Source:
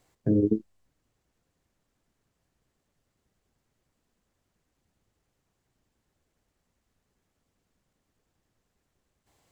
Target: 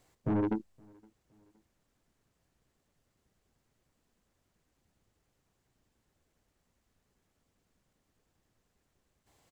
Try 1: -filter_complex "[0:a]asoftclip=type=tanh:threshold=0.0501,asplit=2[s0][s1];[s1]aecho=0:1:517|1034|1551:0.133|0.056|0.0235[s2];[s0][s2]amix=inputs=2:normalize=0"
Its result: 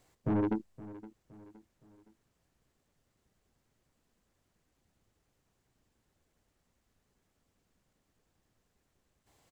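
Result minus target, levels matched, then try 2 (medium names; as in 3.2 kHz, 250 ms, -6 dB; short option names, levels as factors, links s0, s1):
echo-to-direct +11.5 dB
-filter_complex "[0:a]asoftclip=type=tanh:threshold=0.0501,asplit=2[s0][s1];[s1]aecho=0:1:517|1034:0.0355|0.0149[s2];[s0][s2]amix=inputs=2:normalize=0"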